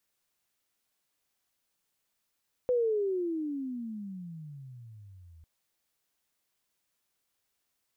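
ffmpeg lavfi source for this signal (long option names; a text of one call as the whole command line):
ffmpeg -f lavfi -i "aevalsrc='pow(10,(-23-28*t/2.75)/20)*sin(2*PI*507*2.75/(-32.5*log(2)/12)*(exp(-32.5*log(2)/12*t/2.75)-1))':duration=2.75:sample_rate=44100" out.wav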